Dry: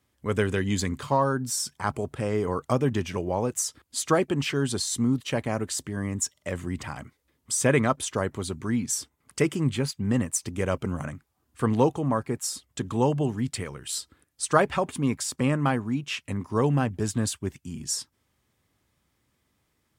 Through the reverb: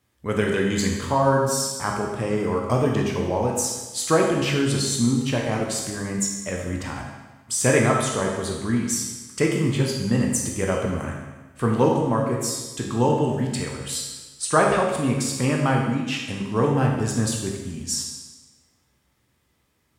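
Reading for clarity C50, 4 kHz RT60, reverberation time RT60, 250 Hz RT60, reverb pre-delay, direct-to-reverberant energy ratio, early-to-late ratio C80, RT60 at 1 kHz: 2.5 dB, 1.2 s, 1.2 s, 1.3 s, 15 ms, −1.0 dB, 4.5 dB, 1.2 s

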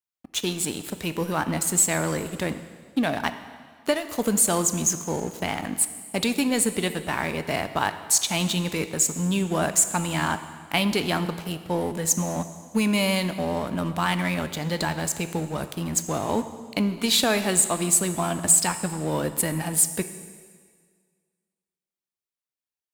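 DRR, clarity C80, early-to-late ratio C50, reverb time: 10.0 dB, 13.0 dB, 11.5 dB, 1.8 s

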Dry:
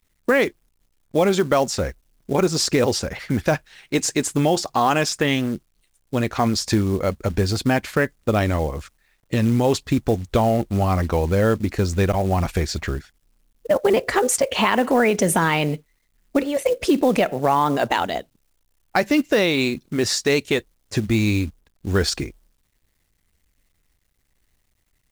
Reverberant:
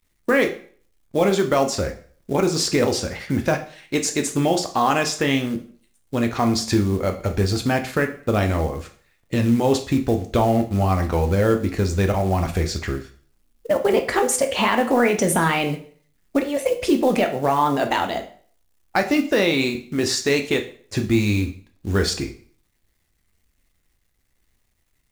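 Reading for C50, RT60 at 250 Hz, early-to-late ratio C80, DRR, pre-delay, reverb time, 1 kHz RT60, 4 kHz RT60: 12.0 dB, 0.50 s, 16.0 dB, 5.0 dB, 5 ms, 0.50 s, 0.50 s, 0.45 s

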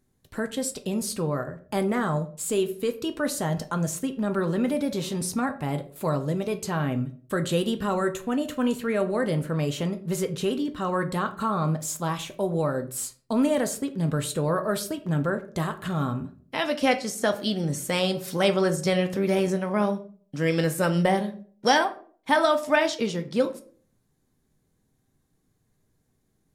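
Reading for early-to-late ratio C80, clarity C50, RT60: 18.5 dB, 14.5 dB, 0.45 s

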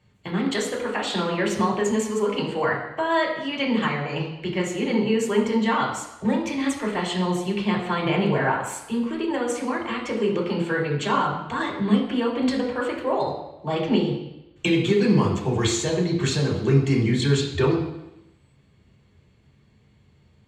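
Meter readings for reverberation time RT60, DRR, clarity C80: 0.90 s, −4.5 dB, 8.0 dB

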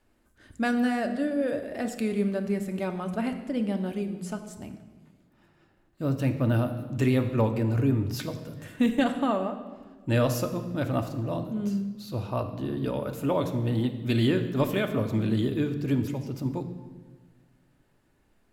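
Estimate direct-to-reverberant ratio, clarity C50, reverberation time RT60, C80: 5.5 dB, 10.0 dB, 1.4 s, 11.5 dB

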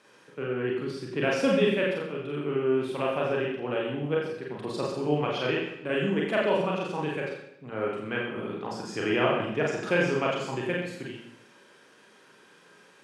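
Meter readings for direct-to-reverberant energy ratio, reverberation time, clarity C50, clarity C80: −3.5 dB, 0.80 s, 3.0 dB, 4.5 dB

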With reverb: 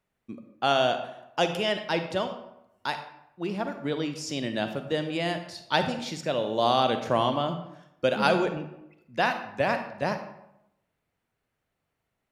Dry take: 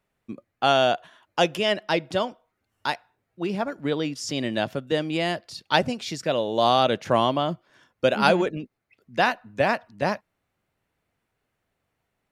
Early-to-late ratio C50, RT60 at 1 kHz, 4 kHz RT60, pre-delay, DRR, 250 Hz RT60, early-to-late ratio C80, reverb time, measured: 8.5 dB, 0.80 s, 0.55 s, 37 ms, 7.5 dB, 0.85 s, 11.0 dB, 0.85 s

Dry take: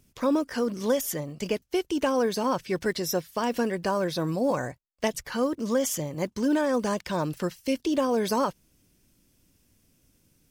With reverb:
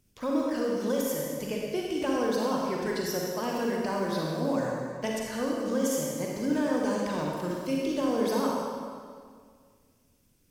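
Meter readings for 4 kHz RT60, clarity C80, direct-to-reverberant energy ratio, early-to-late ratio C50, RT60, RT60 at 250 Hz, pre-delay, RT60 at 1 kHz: 1.6 s, 0.5 dB, −2.5 dB, −1.5 dB, 2.0 s, 2.2 s, 36 ms, 1.9 s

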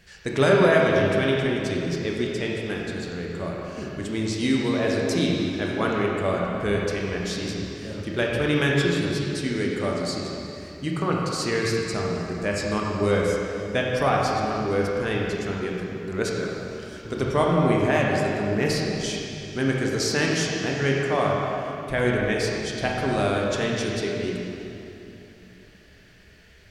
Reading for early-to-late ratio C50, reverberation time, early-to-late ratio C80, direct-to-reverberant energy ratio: −1.0 dB, 3.0 s, 0.5 dB, −2.5 dB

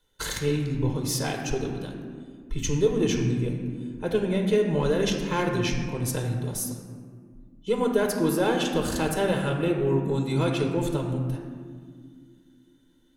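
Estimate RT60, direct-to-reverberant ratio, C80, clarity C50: 2.0 s, 2.0 dB, 6.0 dB, 4.5 dB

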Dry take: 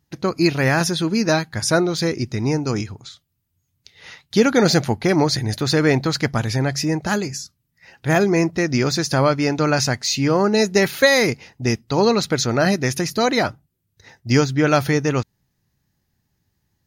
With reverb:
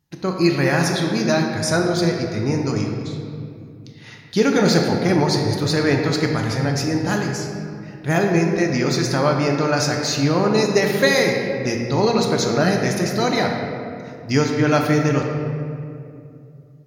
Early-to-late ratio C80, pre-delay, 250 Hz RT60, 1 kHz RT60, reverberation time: 4.0 dB, 4 ms, 3.2 s, 2.2 s, 2.5 s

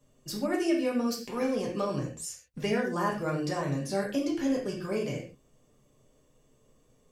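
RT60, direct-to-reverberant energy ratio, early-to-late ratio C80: non-exponential decay, −2.5 dB, 10.5 dB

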